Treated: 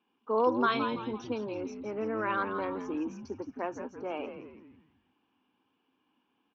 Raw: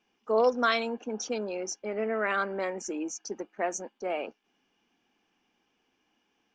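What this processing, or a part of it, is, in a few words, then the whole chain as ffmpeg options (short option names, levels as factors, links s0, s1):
frequency-shifting delay pedal into a guitar cabinet: -filter_complex "[0:a]asplit=6[s0][s1][s2][s3][s4][s5];[s1]adelay=167,afreqshift=-110,volume=0.355[s6];[s2]adelay=334,afreqshift=-220,volume=0.157[s7];[s3]adelay=501,afreqshift=-330,volume=0.0684[s8];[s4]adelay=668,afreqshift=-440,volume=0.0302[s9];[s5]adelay=835,afreqshift=-550,volume=0.0133[s10];[s0][s6][s7][s8][s9][s10]amix=inputs=6:normalize=0,highpass=88,equalizer=f=140:t=q:w=4:g=-4,equalizer=f=270:t=q:w=4:g=8,equalizer=f=660:t=q:w=4:g=-6,equalizer=f=1000:t=q:w=4:g=8,equalizer=f=2000:t=q:w=4:g=-9,lowpass=f=3700:w=0.5412,lowpass=f=3700:w=1.3066,volume=0.708"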